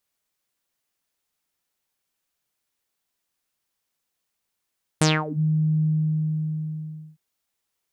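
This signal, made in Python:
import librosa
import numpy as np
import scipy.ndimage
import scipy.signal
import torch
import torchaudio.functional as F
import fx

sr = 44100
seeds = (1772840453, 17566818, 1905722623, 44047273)

y = fx.sub_voice(sr, note=51, wave='saw', cutoff_hz=160.0, q=7.5, env_oct=6.0, env_s=0.36, attack_ms=3.5, decay_s=0.23, sustain_db=-19.0, release_s=1.33, note_s=0.83, slope=12)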